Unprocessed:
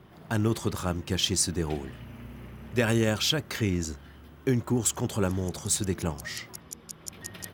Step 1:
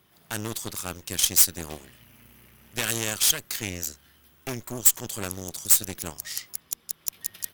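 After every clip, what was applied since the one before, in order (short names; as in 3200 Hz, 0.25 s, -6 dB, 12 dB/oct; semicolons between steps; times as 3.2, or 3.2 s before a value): added harmonics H 4 -11 dB, 8 -17 dB, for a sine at -9.5 dBFS; pre-emphasis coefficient 0.9; gain +6 dB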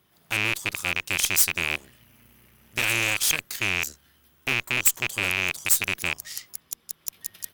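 rattling part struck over -43 dBFS, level -8 dBFS; gain -2.5 dB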